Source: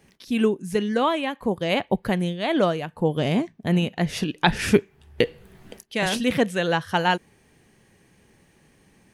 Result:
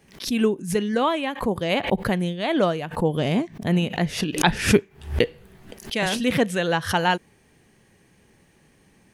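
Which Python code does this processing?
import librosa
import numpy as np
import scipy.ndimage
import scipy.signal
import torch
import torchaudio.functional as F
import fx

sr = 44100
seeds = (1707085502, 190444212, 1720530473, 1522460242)

y = fx.pre_swell(x, sr, db_per_s=140.0)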